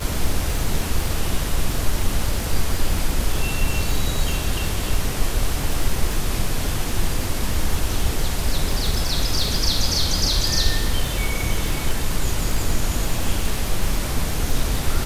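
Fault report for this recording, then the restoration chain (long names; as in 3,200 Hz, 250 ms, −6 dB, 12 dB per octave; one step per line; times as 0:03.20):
surface crackle 52 per second −23 dBFS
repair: click removal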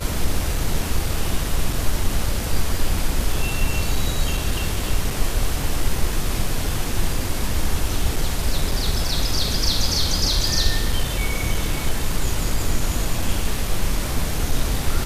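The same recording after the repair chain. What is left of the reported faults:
none of them is left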